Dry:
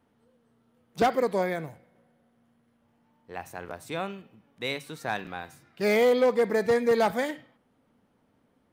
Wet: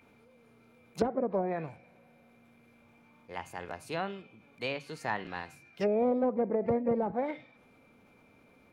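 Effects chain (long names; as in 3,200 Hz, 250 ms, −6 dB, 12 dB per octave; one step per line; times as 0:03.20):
steady tone 2,100 Hz −57 dBFS
treble cut that deepens with the level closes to 460 Hz, closed at −21 dBFS
formants moved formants +2 semitones
level −2 dB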